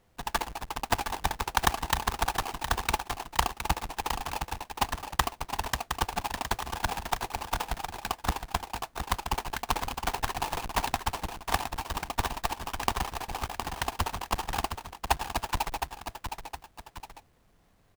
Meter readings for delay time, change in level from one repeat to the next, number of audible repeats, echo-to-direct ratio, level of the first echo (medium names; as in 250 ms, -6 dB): 714 ms, -7.0 dB, 2, -6.5 dB, -7.5 dB